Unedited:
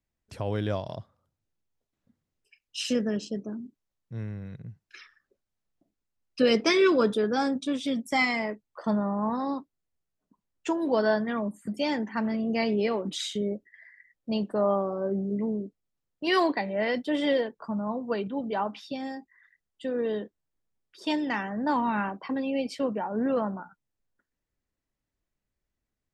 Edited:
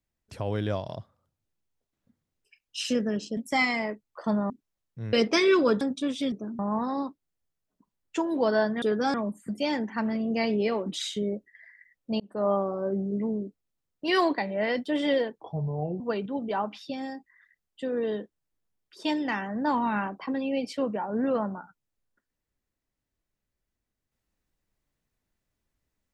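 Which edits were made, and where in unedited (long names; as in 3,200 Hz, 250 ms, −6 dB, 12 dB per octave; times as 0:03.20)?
0:03.37–0:03.64: swap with 0:07.97–0:09.10
0:04.27–0:06.46: remove
0:07.14–0:07.46: move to 0:11.33
0:14.39–0:14.68: fade in
0:17.60–0:18.02: play speed 71%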